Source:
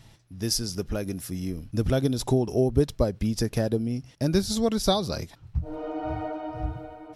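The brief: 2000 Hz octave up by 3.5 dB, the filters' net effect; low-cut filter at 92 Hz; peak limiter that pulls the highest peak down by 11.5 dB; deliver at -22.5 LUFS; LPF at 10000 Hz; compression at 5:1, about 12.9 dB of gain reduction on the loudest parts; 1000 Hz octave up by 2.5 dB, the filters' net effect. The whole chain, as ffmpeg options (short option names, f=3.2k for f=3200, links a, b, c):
-af "highpass=92,lowpass=10k,equalizer=f=1k:t=o:g=3,equalizer=f=2k:t=o:g=3.5,acompressor=threshold=-32dB:ratio=5,volume=19dB,alimiter=limit=-13dB:level=0:latency=1"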